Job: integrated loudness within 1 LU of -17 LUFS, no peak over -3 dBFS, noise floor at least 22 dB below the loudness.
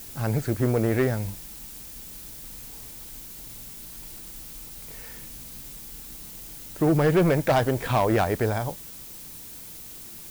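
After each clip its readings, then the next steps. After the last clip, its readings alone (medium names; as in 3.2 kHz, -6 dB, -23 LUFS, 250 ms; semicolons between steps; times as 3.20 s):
clipped samples 0.9%; clipping level -15.0 dBFS; noise floor -42 dBFS; noise floor target -46 dBFS; loudness -24.0 LUFS; peak level -15.0 dBFS; loudness target -17.0 LUFS
-> clip repair -15 dBFS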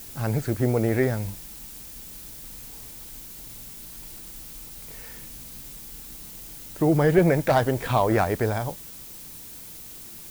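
clipped samples 0.0%; noise floor -42 dBFS; noise floor target -45 dBFS
-> noise print and reduce 6 dB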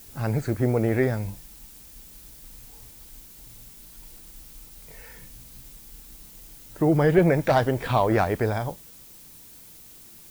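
noise floor -48 dBFS; loudness -23.5 LUFS; peak level -7.5 dBFS; loudness target -17.0 LUFS
-> trim +6.5 dB; peak limiter -3 dBFS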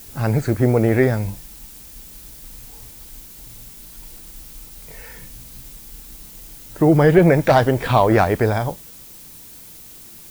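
loudness -17.0 LUFS; peak level -3.0 dBFS; noise floor -41 dBFS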